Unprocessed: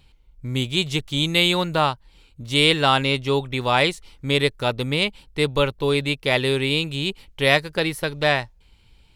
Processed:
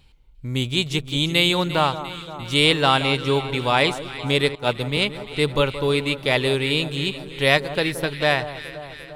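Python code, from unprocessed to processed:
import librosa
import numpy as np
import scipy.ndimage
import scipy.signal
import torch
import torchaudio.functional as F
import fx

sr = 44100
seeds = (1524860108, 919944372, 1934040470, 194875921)

y = fx.echo_alternate(x, sr, ms=174, hz=1400.0, feedback_pct=79, wet_db=-12.0)
y = fx.band_widen(y, sr, depth_pct=100, at=(4.55, 4.97))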